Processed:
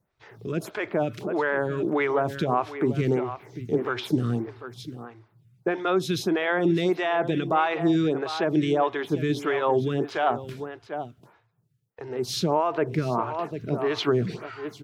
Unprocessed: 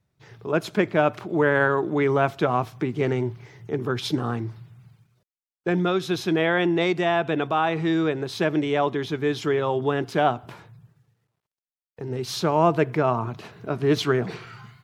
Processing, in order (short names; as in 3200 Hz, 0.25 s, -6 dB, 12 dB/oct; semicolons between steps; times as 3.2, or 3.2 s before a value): 12.26–14.41 high shelf 7400 Hz -5 dB; echo 0.744 s -13.5 dB; limiter -15 dBFS, peak gain reduction 9 dB; photocell phaser 1.6 Hz; gain +3.5 dB